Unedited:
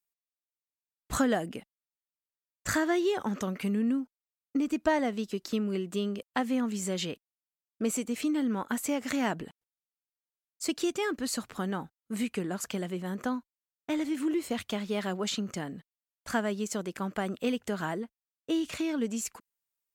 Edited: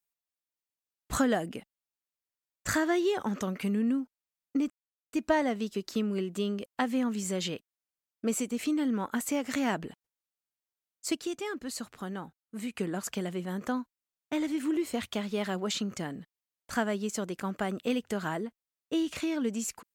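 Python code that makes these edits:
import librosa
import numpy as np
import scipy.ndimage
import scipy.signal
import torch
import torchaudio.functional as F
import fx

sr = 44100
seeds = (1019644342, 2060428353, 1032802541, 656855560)

y = fx.edit(x, sr, fx.insert_silence(at_s=4.7, length_s=0.43),
    fx.clip_gain(start_s=10.72, length_s=1.6, db=-5.0), tone=tone)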